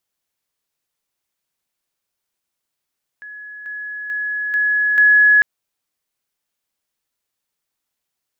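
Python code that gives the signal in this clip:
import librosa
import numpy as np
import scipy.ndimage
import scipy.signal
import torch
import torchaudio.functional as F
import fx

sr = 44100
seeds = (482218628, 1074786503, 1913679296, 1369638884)

y = fx.level_ladder(sr, hz=1690.0, from_db=-32.0, step_db=6.0, steps=5, dwell_s=0.44, gap_s=0.0)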